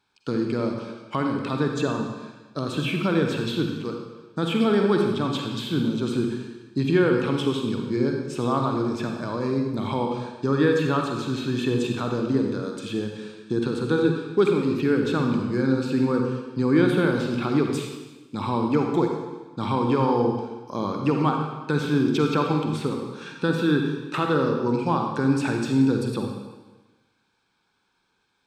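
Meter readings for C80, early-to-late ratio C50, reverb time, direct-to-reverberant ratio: 5.0 dB, 3.0 dB, 1.2 s, 2.5 dB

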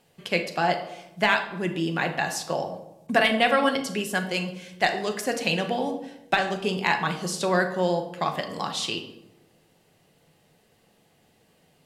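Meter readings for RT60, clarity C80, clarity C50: 0.90 s, 12.5 dB, 9.5 dB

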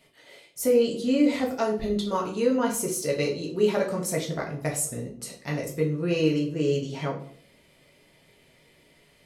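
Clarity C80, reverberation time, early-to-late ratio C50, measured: 12.5 dB, 0.55 s, 8.0 dB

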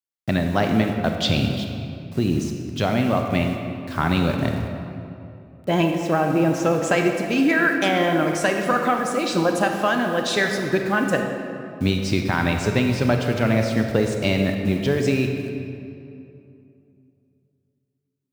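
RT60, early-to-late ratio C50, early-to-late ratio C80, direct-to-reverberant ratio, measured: 2.7 s, 4.0 dB, 5.5 dB, 3.5 dB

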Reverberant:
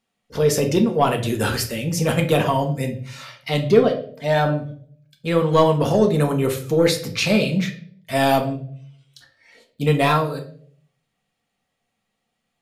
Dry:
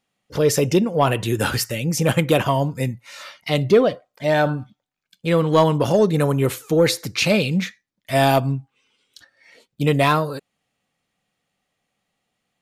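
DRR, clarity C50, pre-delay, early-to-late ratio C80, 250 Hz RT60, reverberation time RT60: 3.5 dB, 11.0 dB, 4 ms, 15.5 dB, 0.70 s, 0.55 s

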